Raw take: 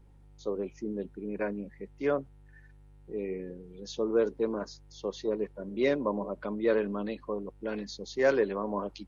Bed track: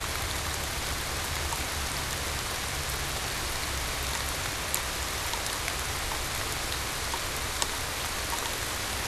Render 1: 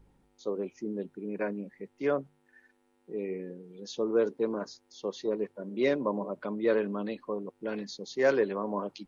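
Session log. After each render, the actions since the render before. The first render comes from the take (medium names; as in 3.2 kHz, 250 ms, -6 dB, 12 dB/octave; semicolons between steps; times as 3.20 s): de-hum 50 Hz, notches 3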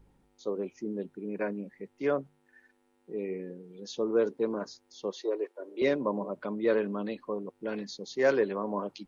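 5.12–5.82 s: steep high-pass 310 Hz 48 dB/octave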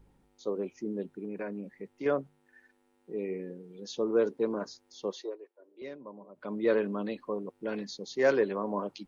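1.24–2.06 s: compression 2.5:1, threshold -34 dBFS; 5.15–6.56 s: dip -16 dB, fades 0.22 s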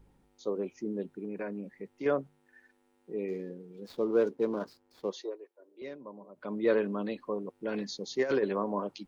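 3.28–5.10 s: median filter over 15 samples; 7.74–8.64 s: compressor with a negative ratio -26 dBFS, ratio -0.5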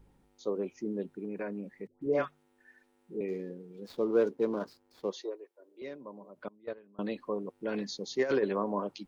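1.87–3.21 s: phase dispersion highs, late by 147 ms, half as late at 850 Hz; 6.48–6.99 s: gate -22 dBFS, range -27 dB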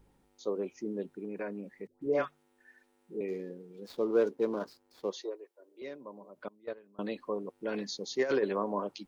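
tone controls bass -4 dB, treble +2 dB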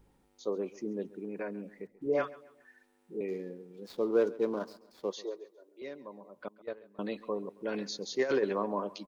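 feedback delay 136 ms, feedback 38%, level -19.5 dB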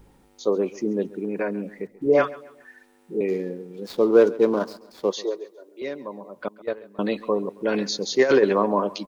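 trim +11.5 dB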